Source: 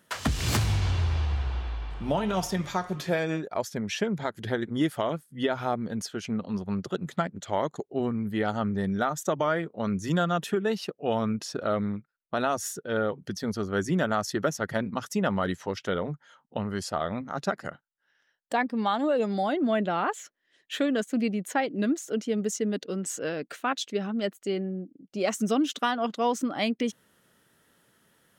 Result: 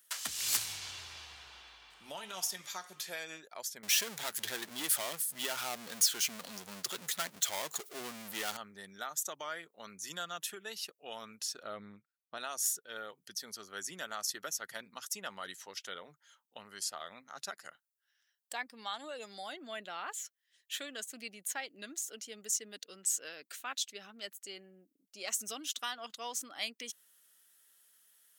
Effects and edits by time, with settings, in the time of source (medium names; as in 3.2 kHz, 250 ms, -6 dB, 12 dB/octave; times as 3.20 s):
3.83–8.57 s: power-law waveshaper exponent 0.5
11.63–12.38 s: tilt EQ -2.5 dB/octave
whole clip: differentiator; trim +2.5 dB